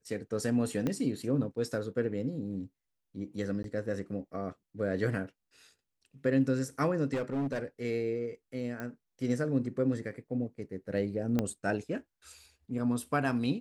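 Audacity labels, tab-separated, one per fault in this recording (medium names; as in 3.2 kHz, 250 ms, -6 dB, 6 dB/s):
0.870000	0.870000	pop -19 dBFS
3.630000	3.640000	dropout 12 ms
7.130000	7.630000	clipped -28.5 dBFS
8.800000	8.800000	pop -24 dBFS
11.390000	11.390000	pop -16 dBFS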